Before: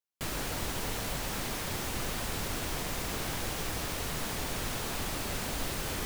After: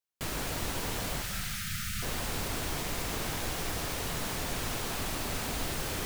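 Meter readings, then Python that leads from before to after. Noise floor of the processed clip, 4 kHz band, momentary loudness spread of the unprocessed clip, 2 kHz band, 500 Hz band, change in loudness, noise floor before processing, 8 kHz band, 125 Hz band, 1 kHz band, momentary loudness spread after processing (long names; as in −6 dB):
−37 dBFS, +0.5 dB, 0 LU, +0.5 dB, 0.0 dB, +0.5 dB, −36 dBFS, +0.5 dB, +0.5 dB, 0.0 dB, 1 LU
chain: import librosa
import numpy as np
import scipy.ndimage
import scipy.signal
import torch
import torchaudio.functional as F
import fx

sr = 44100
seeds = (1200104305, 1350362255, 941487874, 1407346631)

p1 = fx.spec_erase(x, sr, start_s=1.22, length_s=0.81, low_hz=220.0, high_hz=1200.0)
p2 = p1 + fx.echo_banded(p1, sr, ms=105, feedback_pct=83, hz=870.0, wet_db=-23, dry=0)
y = fx.rev_gated(p2, sr, seeds[0], gate_ms=370, shape='flat', drr_db=8.5)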